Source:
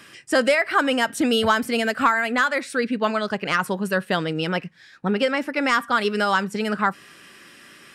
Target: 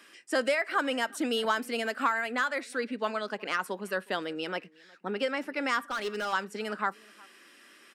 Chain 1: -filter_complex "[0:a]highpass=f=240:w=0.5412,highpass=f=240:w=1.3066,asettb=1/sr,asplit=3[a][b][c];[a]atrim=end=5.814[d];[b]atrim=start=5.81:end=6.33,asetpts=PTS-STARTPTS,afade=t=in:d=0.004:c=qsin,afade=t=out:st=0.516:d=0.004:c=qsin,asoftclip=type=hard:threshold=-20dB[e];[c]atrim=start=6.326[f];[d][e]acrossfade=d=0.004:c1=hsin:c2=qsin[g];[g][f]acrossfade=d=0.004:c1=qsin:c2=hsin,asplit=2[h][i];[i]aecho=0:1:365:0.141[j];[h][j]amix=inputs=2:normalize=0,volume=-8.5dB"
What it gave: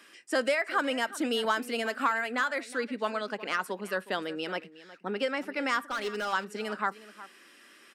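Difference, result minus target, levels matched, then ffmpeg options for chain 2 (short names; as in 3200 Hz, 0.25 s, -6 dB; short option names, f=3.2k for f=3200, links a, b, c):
echo-to-direct +8.5 dB
-filter_complex "[0:a]highpass=f=240:w=0.5412,highpass=f=240:w=1.3066,asettb=1/sr,asplit=3[a][b][c];[a]atrim=end=5.814[d];[b]atrim=start=5.81:end=6.33,asetpts=PTS-STARTPTS,afade=t=in:d=0.004:c=qsin,afade=t=out:st=0.516:d=0.004:c=qsin,asoftclip=type=hard:threshold=-20dB[e];[c]atrim=start=6.326[f];[d][e]acrossfade=d=0.004:c1=hsin:c2=qsin[g];[g][f]acrossfade=d=0.004:c1=qsin:c2=hsin,asplit=2[h][i];[i]aecho=0:1:365:0.0531[j];[h][j]amix=inputs=2:normalize=0,volume=-8.5dB"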